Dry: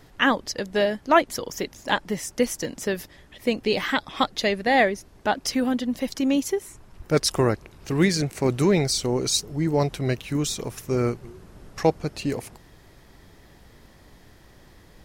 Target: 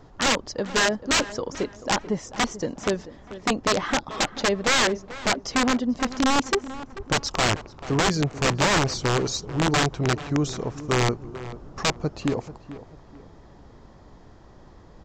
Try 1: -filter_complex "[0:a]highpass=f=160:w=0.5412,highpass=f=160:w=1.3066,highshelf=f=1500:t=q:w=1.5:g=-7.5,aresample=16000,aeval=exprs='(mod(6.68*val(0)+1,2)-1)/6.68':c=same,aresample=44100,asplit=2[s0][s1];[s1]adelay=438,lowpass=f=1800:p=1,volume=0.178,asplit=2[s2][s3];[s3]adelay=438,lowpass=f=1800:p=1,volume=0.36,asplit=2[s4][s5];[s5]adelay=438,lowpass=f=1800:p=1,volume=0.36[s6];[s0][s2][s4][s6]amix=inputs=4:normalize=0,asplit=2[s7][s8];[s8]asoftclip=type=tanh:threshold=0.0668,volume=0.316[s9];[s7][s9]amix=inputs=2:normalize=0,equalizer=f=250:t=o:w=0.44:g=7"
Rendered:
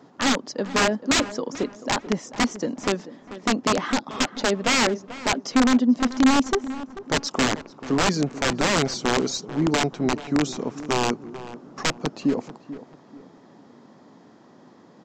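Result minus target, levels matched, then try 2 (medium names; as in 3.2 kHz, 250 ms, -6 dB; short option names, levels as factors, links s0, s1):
125 Hz band -5.0 dB; 250 Hz band +3.5 dB
-filter_complex "[0:a]highshelf=f=1500:t=q:w=1.5:g=-7.5,aresample=16000,aeval=exprs='(mod(6.68*val(0)+1,2)-1)/6.68':c=same,aresample=44100,asplit=2[s0][s1];[s1]adelay=438,lowpass=f=1800:p=1,volume=0.178,asplit=2[s2][s3];[s3]adelay=438,lowpass=f=1800:p=1,volume=0.36,asplit=2[s4][s5];[s5]adelay=438,lowpass=f=1800:p=1,volume=0.36[s6];[s0][s2][s4][s6]amix=inputs=4:normalize=0,asplit=2[s7][s8];[s8]asoftclip=type=tanh:threshold=0.0668,volume=0.316[s9];[s7][s9]amix=inputs=2:normalize=0"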